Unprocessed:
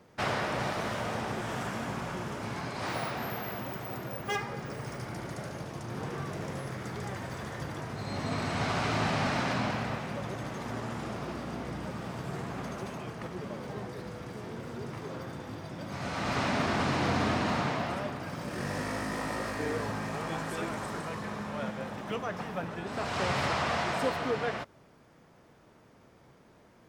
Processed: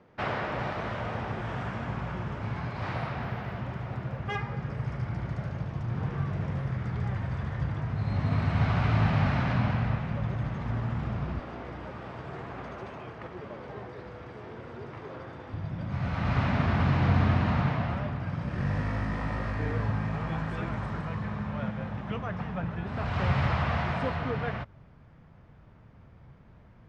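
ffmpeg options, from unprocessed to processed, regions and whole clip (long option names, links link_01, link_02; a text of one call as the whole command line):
ffmpeg -i in.wav -filter_complex "[0:a]asettb=1/sr,asplit=3[link_01][link_02][link_03];[link_01]atrim=end=11.394[link_04];[link_02]atrim=start=11.39:end=15.54,asetpts=PTS-STARTPTS,afade=type=in:duration=0.004:curve=qsin,afade=type=out:start_time=4.146:duration=0.004:curve=qsin,highpass=53,lowshelf=frequency=250:width_type=q:width=1.5:gain=-10.5[link_05];[link_03]atrim=start=15.536[link_06];[link_04][link_05]acrossfade=duration=0.004:curve1=hsin:curve2=qsin[link_07];[link_07][link_06]acrossfade=duration=0.004:curve1=qsin:curve2=hsin,lowpass=2800,asubboost=boost=6.5:cutoff=130" out.wav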